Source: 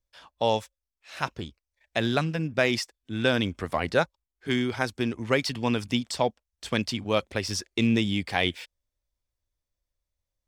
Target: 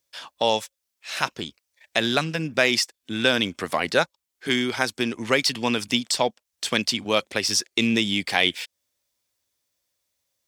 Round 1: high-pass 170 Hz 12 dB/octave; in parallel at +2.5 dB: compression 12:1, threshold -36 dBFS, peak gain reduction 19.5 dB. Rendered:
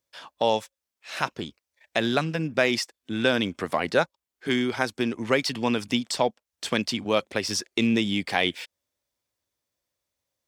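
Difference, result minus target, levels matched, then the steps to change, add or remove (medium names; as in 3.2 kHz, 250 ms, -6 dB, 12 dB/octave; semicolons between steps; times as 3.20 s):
4 kHz band -3.5 dB
add after high-pass: treble shelf 2 kHz +8.5 dB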